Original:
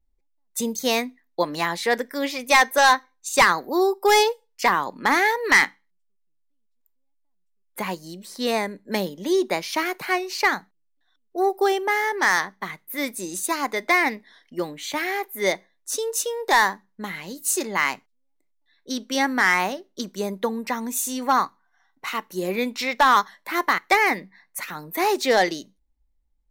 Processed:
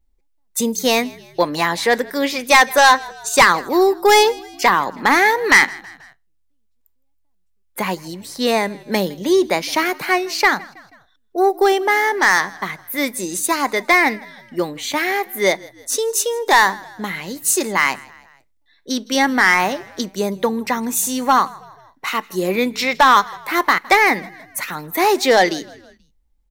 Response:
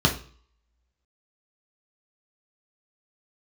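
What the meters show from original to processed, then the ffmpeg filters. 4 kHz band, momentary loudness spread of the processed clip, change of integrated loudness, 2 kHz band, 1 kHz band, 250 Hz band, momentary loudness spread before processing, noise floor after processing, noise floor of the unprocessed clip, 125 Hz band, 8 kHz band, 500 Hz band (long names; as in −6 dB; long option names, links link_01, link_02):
+6.0 dB, 14 LU, +5.5 dB, +5.5 dB, +5.5 dB, +6.0 dB, 14 LU, −62 dBFS, −68 dBFS, +6.5 dB, +6.0 dB, +6.0 dB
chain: -filter_complex "[0:a]asplit=4[link_01][link_02][link_03][link_04];[link_02]adelay=161,afreqshift=-43,volume=-23.5dB[link_05];[link_03]adelay=322,afreqshift=-86,volume=-29.5dB[link_06];[link_04]adelay=483,afreqshift=-129,volume=-35.5dB[link_07];[link_01][link_05][link_06][link_07]amix=inputs=4:normalize=0,acontrast=66"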